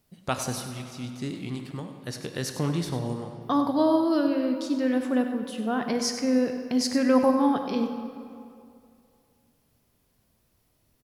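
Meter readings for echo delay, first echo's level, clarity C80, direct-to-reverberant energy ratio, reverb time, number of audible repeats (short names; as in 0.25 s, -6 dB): 97 ms, -11.5 dB, 6.5 dB, 5.0 dB, 2.5 s, 1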